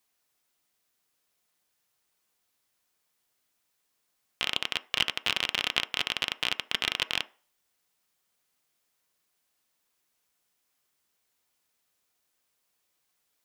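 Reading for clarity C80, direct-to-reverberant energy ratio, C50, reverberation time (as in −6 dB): 26.5 dB, 11.0 dB, 21.5 dB, 0.40 s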